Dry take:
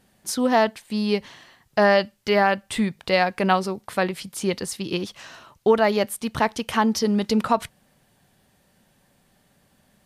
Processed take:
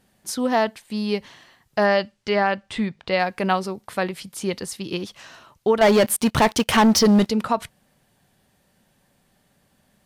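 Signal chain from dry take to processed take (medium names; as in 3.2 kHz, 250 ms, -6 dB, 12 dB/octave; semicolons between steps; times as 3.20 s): 1.86–3.18 s: low-pass 8.6 kHz -> 4.4 kHz 12 dB/octave; 5.81–7.27 s: waveshaping leveller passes 3; trim -1.5 dB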